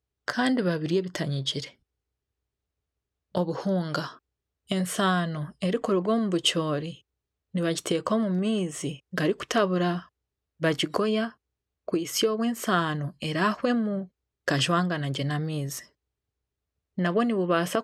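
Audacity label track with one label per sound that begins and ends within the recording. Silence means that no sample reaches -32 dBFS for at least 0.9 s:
3.350000	15.790000	sound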